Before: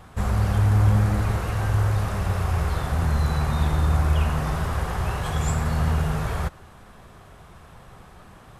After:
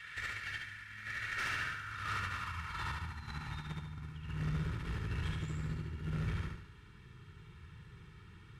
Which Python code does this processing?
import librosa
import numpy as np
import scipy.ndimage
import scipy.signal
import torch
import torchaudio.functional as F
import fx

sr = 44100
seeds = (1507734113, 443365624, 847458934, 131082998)

y = scipy.signal.sosfilt(scipy.signal.cheby1(2, 1.0, [140.0, 2500.0], 'bandstop', fs=sr, output='sos'), x)
y = y + 0.6 * np.pad(y, (int(2.2 * sr / 1000.0), 0))[:len(y)]
y = fx.over_compress(y, sr, threshold_db=-25.0, ratio=-1.0)
y = fx.filter_sweep_bandpass(y, sr, from_hz=1800.0, to_hz=490.0, start_s=1.12, end_s=4.54, q=3.3)
y = fx.tube_stage(y, sr, drive_db=46.0, bias=0.35)
y = fx.echo_feedback(y, sr, ms=72, feedback_pct=43, wet_db=-3.0)
y = y * librosa.db_to_amplitude(13.0)